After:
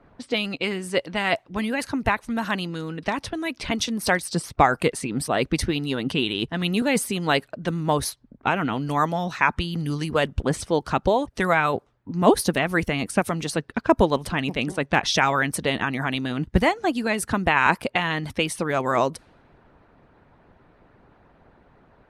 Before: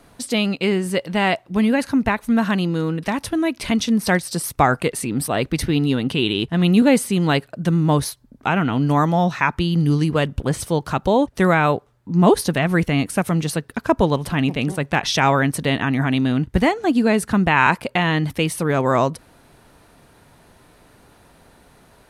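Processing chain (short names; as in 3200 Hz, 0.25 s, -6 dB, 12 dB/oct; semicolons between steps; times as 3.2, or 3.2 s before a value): low-pass opened by the level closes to 1800 Hz, open at -15.5 dBFS; harmonic-percussive split harmonic -10 dB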